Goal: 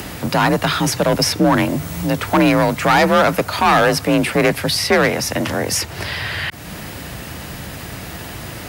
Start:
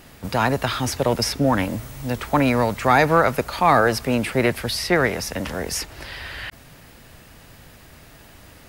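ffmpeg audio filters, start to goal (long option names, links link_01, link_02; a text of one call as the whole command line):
ffmpeg -i in.wav -filter_complex "[0:a]asplit=2[link_01][link_02];[link_02]acompressor=mode=upward:threshold=-20dB:ratio=2.5,volume=2dB[link_03];[link_01][link_03]amix=inputs=2:normalize=0,asoftclip=type=hard:threshold=-7.5dB,afreqshift=38,volume=-1dB" out.wav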